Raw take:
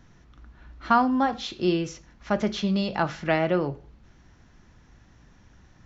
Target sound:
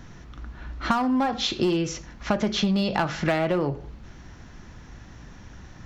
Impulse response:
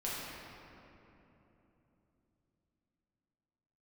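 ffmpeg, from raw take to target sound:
-filter_complex "[0:a]asplit=2[link_01][link_02];[link_02]aeval=exprs='0.0944*(abs(mod(val(0)/0.0944+3,4)-2)-1)':channel_layout=same,volume=-7dB[link_03];[link_01][link_03]amix=inputs=2:normalize=0,acompressor=threshold=-27dB:ratio=10,volume=7dB"

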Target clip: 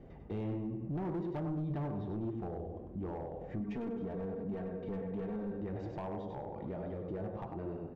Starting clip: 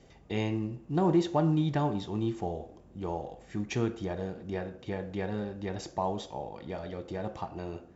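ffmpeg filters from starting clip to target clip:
ffmpeg -i in.wav -filter_complex "[0:a]lowpass=1800,aecho=1:1:98|196|294|392:0.447|0.156|0.0547|0.0192,acompressor=threshold=-39dB:ratio=2,flanger=delay=2.5:depth=9.3:regen=78:speed=1.3:shape=triangular,asoftclip=type=hard:threshold=-38dB,asettb=1/sr,asplit=3[link_01][link_02][link_03];[link_01]atrim=end=3.604[link_04];[link_02]atrim=start=3.6:end=5.61,asetpts=PTS-STARTPTS,afade=type=in:duration=0.004:curve=qsin,afade=type=out:start_time=2.006:duration=0.004:curve=qsin,aecho=1:1:4.4:0.86,atrim=end_sample=88641[link_05];[link_03]atrim=start=5.606[link_06];[link_04][link_05]acrossfade=duration=0.004:curve1=hsin:curve2=qsin[link_07];[link_07][link_06]acrossfade=duration=0.004:curve1=qsin:curve2=hsin,asoftclip=type=tanh:threshold=-36.5dB,alimiter=level_in=18.5dB:limit=-24dB:level=0:latency=1:release=80,volume=-18.5dB,tiltshelf=frequency=650:gain=4.5,volume=6.5dB" out.wav

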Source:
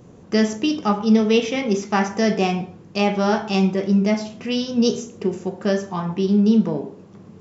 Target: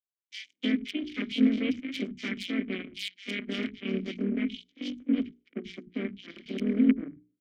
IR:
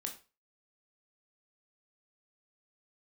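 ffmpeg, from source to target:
-filter_complex "[0:a]aeval=exprs='max(val(0),0)':channel_layout=same,lowpass=4400,aeval=exprs='(mod(2.51*val(0)+1,2)-1)/2.51':channel_layout=same,asplit=2[link_01][link_02];[link_02]asetrate=52444,aresample=44100,atempo=0.840896,volume=-4dB[link_03];[link_01][link_03]amix=inputs=2:normalize=0,aeval=exprs='0.473*(cos(1*acos(clip(val(0)/0.473,-1,1)))-cos(1*PI/2))+0.168*(cos(2*acos(clip(val(0)/0.473,-1,1)))-cos(2*PI/2))+0.00473*(cos(3*acos(clip(val(0)/0.473,-1,1)))-cos(3*PI/2))+0.0668*(cos(7*acos(clip(val(0)/0.473,-1,1)))-cos(7*PI/2))+0.0266*(cos(8*acos(clip(val(0)/0.473,-1,1)))-cos(8*PI/2))':channel_layout=same,asplit=3[link_04][link_05][link_06];[link_04]bandpass=frequency=270:width_type=q:width=8,volume=0dB[link_07];[link_05]bandpass=frequency=2290:width_type=q:width=8,volume=-6dB[link_08];[link_06]bandpass=frequency=3010:width_type=q:width=8,volume=-9dB[link_09];[link_07][link_08][link_09]amix=inputs=3:normalize=0,bandreject=frequency=60:width_type=h:width=6,bandreject=frequency=120:width_type=h:width=6,bandreject=frequency=180:width_type=h:width=6,bandreject=frequency=240:width_type=h:width=6,bandreject=frequency=300:width_type=h:width=6,bandreject=frequency=360:width_type=h:width=6,bandreject=frequency=420:width_type=h:width=6,acrossover=split=160|2600[link_10][link_11][link_12];[link_11]adelay=310[link_13];[link_10]adelay=400[link_14];[link_14][link_13][link_12]amix=inputs=3:normalize=0,volume=2.5dB"

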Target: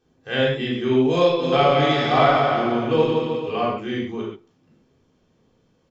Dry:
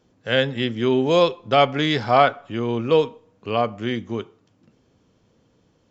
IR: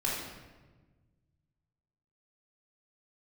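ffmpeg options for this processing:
-filter_complex "[0:a]asplit=3[link_01][link_02][link_03];[link_01]afade=type=out:start_time=1.38:duration=0.02[link_04];[link_02]aecho=1:1:170|314.5|437.3|541.7|630.5:0.631|0.398|0.251|0.158|0.1,afade=type=in:start_time=1.38:duration=0.02,afade=type=out:start_time=3.69:duration=0.02[link_05];[link_03]afade=type=in:start_time=3.69:duration=0.02[link_06];[link_04][link_05][link_06]amix=inputs=3:normalize=0[link_07];[1:a]atrim=start_sample=2205,atrim=end_sample=6615[link_08];[link_07][link_08]afir=irnorm=-1:irlink=0,volume=-7.5dB"

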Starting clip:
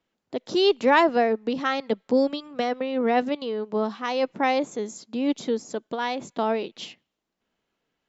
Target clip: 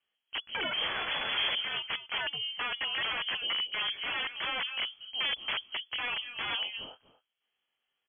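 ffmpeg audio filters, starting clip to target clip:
ffmpeg -i in.wav -filter_complex "[0:a]asettb=1/sr,asplit=3[link_01][link_02][link_03];[link_01]atrim=end=0.734[link_04];[link_02]atrim=start=0.73:end=1.51,asetpts=PTS-STARTPTS,afade=type=in:duration=0.004:curve=qsin,afade=type=out:start_time=0.776:duration=0.004:curve=qsin,aeval=exprs='val(0)+0.5*0.1*sgn(val(0))':channel_layout=same[link_05];[link_03]atrim=start=1.506[link_06];[link_04][link_05]acrossfade=duration=0.004:curve1=hsin:curve2=qsin[link_07];[link_07][link_06]acrossfade=duration=0.004:curve1=qsin:curve2=hsin,asplit=2[link_08][link_09];[link_09]alimiter=limit=-14dB:level=0:latency=1:release=220,volume=2dB[link_10];[link_08][link_10]amix=inputs=2:normalize=0,asplit=2[link_11][link_12];[link_12]adelay=239.1,volume=-13dB,highshelf=frequency=4000:gain=-5.38[link_13];[link_11][link_13]amix=inputs=2:normalize=0,flanger=delay=17.5:depth=6:speed=0.35,acrossover=split=200|2200[link_14][link_15][link_16];[link_15]aeval=exprs='(mod(8.41*val(0)+1,2)-1)/8.41':channel_layout=same[link_17];[link_14][link_17][link_16]amix=inputs=3:normalize=0,lowpass=frequency=2900:width_type=q:width=0.5098,lowpass=frequency=2900:width_type=q:width=0.6013,lowpass=frequency=2900:width_type=q:width=0.9,lowpass=frequency=2900:width_type=q:width=2.563,afreqshift=-3400,volume=-8.5dB" out.wav

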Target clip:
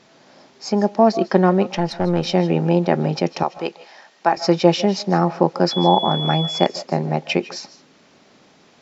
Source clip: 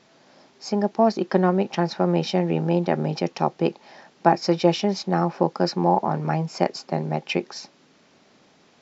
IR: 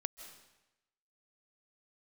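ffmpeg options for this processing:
-filter_complex "[0:a]asettb=1/sr,asplit=3[link_01][link_02][link_03];[link_01]atrim=end=1.774[link_04];[link_02]atrim=start=1.77:end=2.25,asetpts=PTS-STARTPTS,afade=type=in:duration=0.004:curve=qsin,afade=type=out:start_time=0.476:duration=0.004:curve=qsin,aeval=exprs='(tanh(5.62*val(0)+0.5)-tanh(0.5))/5.62':channel_layout=same[link_05];[link_03]atrim=start=2.246[link_06];[link_04][link_05]acrossfade=duration=0.004:curve1=hsin:curve2=qsin[link_07];[link_07][link_06]acrossfade=duration=0.004:curve1=qsin:curve2=hsin,asettb=1/sr,asplit=3[link_08][link_09][link_10];[link_08]atrim=end=3.434[link_11];[link_09]atrim=start=3.43:end=4.37,asetpts=PTS-STARTPTS,afade=type=in:duration=0.004:curve=qsin,afade=type=out:start_time=0.936:duration=0.004:curve=qsin,highpass=frequency=930:poles=1[link_12];[link_10]atrim=start=4.366[link_13];[link_11][link_12]acrossfade=duration=0.004:curve1=hsin:curve2=qsin[link_14];[link_14][link_13]acrossfade=duration=0.004:curve1=qsin:curve2=hsin,asettb=1/sr,asplit=3[link_15][link_16][link_17];[link_15]atrim=end=5.714[link_18];[link_16]atrim=start=5.71:end=6.66,asetpts=PTS-STARTPTS,afade=type=in:duration=0.004:curve=qsin,afade=type=out:start_time=0.946:duration=0.004:curve=qsin,aeval=exprs='val(0)+0.0355*sin(2*PI*3400*n/s)':channel_layout=same[link_19];[link_17]atrim=start=6.656[link_20];[link_18][link_19]acrossfade=duration=0.004:curve1=hsin:curve2=qsin[link_21];[link_21][link_20]acrossfade=duration=0.004:curve1=qsin:curve2=hsin[link_22];[1:a]atrim=start_sample=2205,afade=type=out:start_time=0.21:duration=0.01,atrim=end_sample=9702[link_23];[link_22][link_23]afir=irnorm=-1:irlink=0,volume=6dB"

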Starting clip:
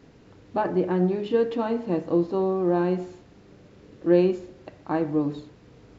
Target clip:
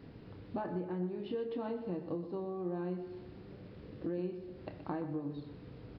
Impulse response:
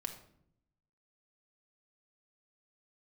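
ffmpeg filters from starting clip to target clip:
-filter_complex "[0:a]equalizer=frequency=100:width=0.39:gain=6,acompressor=threshold=-33dB:ratio=6,asplit=2[link_01][link_02];[link_02]adelay=28,volume=-11dB[link_03];[link_01][link_03]amix=inputs=2:normalize=0,asplit=2[link_04][link_05];[link_05]aecho=0:1:124|248|372|496|620:0.251|0.113|0.0509|0.0229|0.0103[link_06];[link_04][link_06]amix=inputs=2:normalize=0,aresample=11025,aresample=44100,volume=-3.5dB"

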